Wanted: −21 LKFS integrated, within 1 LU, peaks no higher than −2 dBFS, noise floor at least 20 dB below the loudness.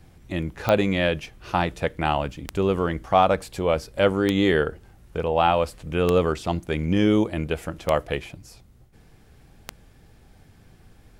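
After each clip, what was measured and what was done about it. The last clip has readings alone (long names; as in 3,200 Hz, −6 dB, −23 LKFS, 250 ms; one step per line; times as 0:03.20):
number of clicks 6; integrated loudness −23.5 LKFS; sample peak −4.5 dBFS; target loudness −21.0 LKFS
→ click removal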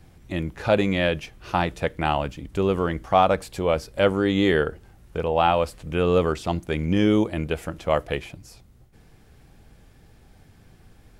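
number of clicks 0; integrated loudness −23.5 LKFS; sample peak −5.5 dBFS; target loudness −21.0 LKFS
→ level +2.5 dB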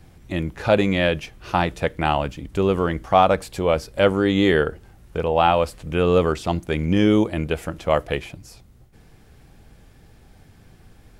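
integrated loudness −21.0 LKFS; sample peak −3.0 dBFS; background noise floor −51 dBFS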